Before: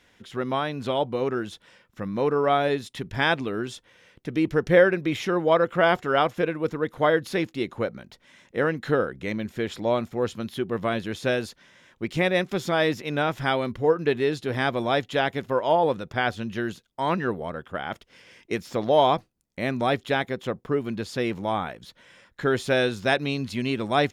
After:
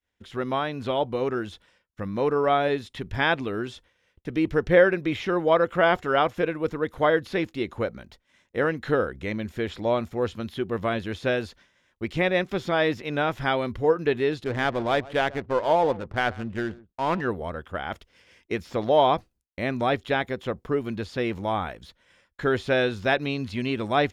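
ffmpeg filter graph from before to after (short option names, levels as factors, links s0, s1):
-filter_complex "[0:a]asettb=1/sr,asplit=3[s0][s1][s2];[s0]atrim=end=14.444[s3];[s1]atrim=start=14.44:end=17.21,asetpts=PTS-STARTPTS,afade=t=in:d=0.004:c=qsin,afade=t=out:st=2.766:d=0.004:c=qsin,aecho=1:1:133:0.106,atrim=end_sample=122157,adynamicsmooth=sensitivity=6:basefreq=510[s4];[s2]atrim=start=17.206[s5];[s3][s4]acrossfade=d=0.004:c1=hsin:c2=qsin[s6];[s6][s5]acrossfade=d=0.004:c1=qsin:c2=hsin,acrossover=split=4400[s7][s8];[s8]acompressor=threshold=0.00224:ratio=4:attack=1:release=60[s9];[s7][s9]amix=inputs=2:normalize=0,agate=range=0.0224:threshold=0.00501:ratio=3:detection=peak,lowshelf=f=100:t=q:w=1.5:g=7"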